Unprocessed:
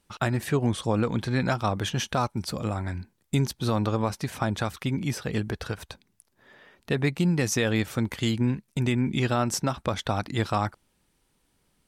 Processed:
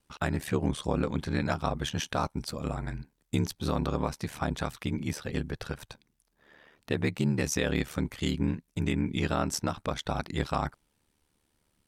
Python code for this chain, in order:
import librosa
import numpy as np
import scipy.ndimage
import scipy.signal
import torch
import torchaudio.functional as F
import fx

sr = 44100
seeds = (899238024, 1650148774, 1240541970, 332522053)

y = x * np.sin(2.0 * np.pi * 37.0 * np.arange(len(x)) / sr)
y = F.gain(torch.from_numpy(y), -1.0).numpy()